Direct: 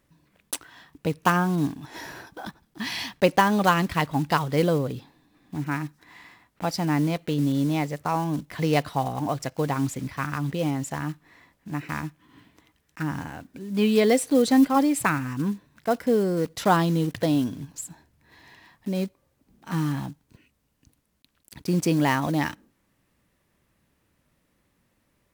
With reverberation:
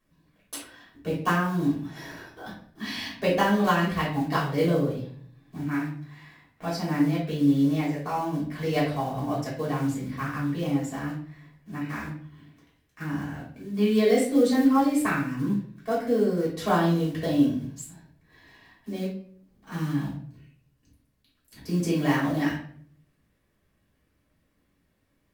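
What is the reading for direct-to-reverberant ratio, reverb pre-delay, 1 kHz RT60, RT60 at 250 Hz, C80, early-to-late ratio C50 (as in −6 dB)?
−8.0 dB, 3 ms, 0.50 s, 0.70 s, 9.0 dB, 4.0 dB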